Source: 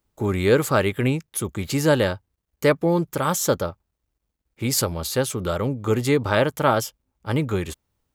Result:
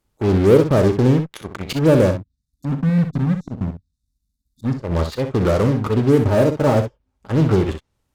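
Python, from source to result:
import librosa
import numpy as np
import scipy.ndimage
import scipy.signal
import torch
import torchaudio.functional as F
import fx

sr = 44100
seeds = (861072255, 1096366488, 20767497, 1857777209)

p1 = fx.env_lowpass_down(x, sr, base_hz=580.0, full_db=-19.5)
p2 = fx.spec_erase(p1, sr, start_s=2.11, length_s=2.65, low_hz=290.0, high_hz=3500.0)
p3 = fx.auto_swell(p2, sr, attack_ms=133.0)
p4 = fx.fuzz(p3, sr, gain_db=34.0, gate_db=-36.0)
p5 = p3 + F.gain(torch.from_numpy(p4), -10.0).numpy()
p6 = fx.notch_comb(p5, sr, f0_hz=170.0, at=(5.63, 7.32))
p7 = p6 + fx.room_early_taps(p6, sr, ms=(37, 63), db=(-13.5, -8.5), dry=0)
y = F.gain(torch.from_numpy(p7), 3.0).numpy()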